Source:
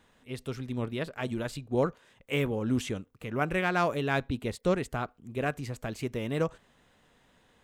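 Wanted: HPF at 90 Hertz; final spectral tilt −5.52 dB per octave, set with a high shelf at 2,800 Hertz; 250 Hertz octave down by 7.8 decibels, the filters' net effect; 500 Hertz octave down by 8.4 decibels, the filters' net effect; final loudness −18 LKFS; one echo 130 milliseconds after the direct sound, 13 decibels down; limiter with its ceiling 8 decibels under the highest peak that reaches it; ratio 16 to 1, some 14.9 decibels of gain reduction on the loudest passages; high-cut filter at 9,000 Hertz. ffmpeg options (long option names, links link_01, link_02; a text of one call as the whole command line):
ffmpeg -i in.wav -af "highpass=90,lowpass=9000,equalizer=frequency=250:width_type=o:gain=-8,equalizer=frequency=500:width_type=o:gain=-8,highshelf=frequency=2800:gain=-4,acompressor=threshold=-41dB:ratio=16,alimiter=level_in=12dB:limit=-24dB:level=0:latency=1,volume=-12dB,aecho=1:1:130:0.224,volume=29.5dB" out.wav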